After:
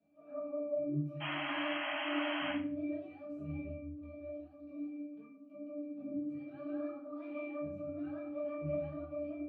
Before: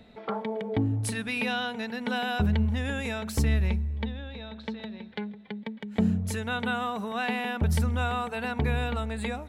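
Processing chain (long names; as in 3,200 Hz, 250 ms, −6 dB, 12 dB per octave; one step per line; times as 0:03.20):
pitch shifter swept by a sawtooth +6.5 semitones, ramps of 191 ms
high-pass filter 260 Hz 12 dB per octave
mains-hum notches 60/120/180/240/300/360/420/480/540/600 Hz
harmonic and percussive parts rebalanced percussive −14 dB
resonances in every octave D, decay 0.47 s
sound drawn into the spectrogram noise, 0:01.20–0:02.53, 560–3,300 Hz −48 dBFS
rectangular room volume 38 cubic metres, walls mixed, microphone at 1.4 metres
level +1.5 dB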